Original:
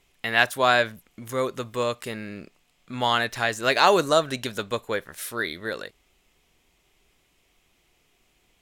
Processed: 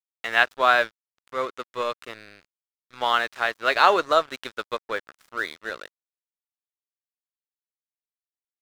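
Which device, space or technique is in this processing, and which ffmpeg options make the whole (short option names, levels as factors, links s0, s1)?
pocket radio on a weak battery: -af "highpass=380,lowpass=4100,aeval=exprs='sgn(val(0))*max(abs(val(0))-0.0126,0)':c=same,equalizer=f=1300:t=o:w=0.51:g=5.5"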